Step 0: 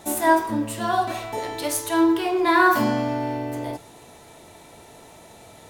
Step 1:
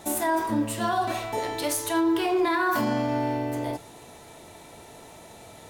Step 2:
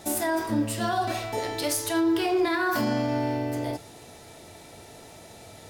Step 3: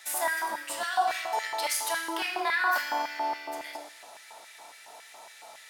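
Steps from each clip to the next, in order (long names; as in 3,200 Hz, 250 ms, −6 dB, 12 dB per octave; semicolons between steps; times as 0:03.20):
brickwall limiter −16.5 dBFS, peak gain reduction 10.5 dB
thirty-one-band graphic EQ 100 Hz +5 dB, 1,000 Hz −6 dB, 5,000 Hz +6 dB
mains hum 60 Hz, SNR 16 dB; four-comb reverb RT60 1.4 s, combs from 27 ms, DRR 6 dB; auto-filter high-pass square 3.6 Hz 880–1,800 Hz; level −2.5 dB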